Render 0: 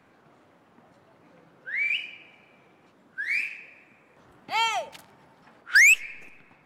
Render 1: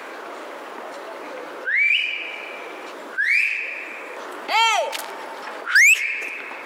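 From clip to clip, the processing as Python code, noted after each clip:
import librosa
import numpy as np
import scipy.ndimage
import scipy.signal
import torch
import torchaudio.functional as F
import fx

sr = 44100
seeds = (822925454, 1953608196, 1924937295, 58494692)

y = scipy.signal.sosfilt(scipy.signal.butter(4, 360.0, 'highpass', fs=sr, output='sos'), x)
y = fx.notch(y, sr, hz=750.0, q=12.0)
y = fx.env_flatten(y, sr, amount_pct=50)
y = F.gain(torch.from_numpy(y), 2.5).numpy()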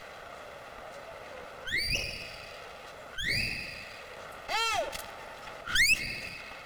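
y = fx.lower_of_two(x, sr, delay_ms=1.5)
y = F.gain(torch.from_numpy(y), -9.0).numpy()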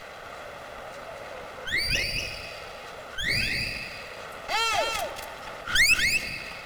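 y = x + 10.0 ** (-5.0 / 20.0) * np.pad(x, (int(236 * sr / 1000.0), 0))[:len(x)]
y = F.gain(torch.from_numpy(y), 4.0).numpy()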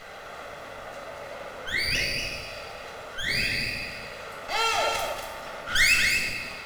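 y = fx.rev_plate(x, sr, seeds[0], rt60_s=1.1, hf_ratio=0.8, predelay_ms=0, drr_db=0.0)
y = F.gain(torch.from_numpy(y), -2.5).numpy()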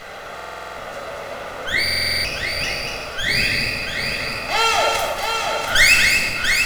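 y = x + 10.0 ** (-5.5 / 20.0) * np.pad(x, (int(688 * sr / 1000.0), 0))[:len(x)]
y = fx.buffer_glitch(y, sr, at_s=(0.35, 1.83), block=2048, repeats=8)
y = F.gain(torch.from_numpy(y), 7.5).numpy()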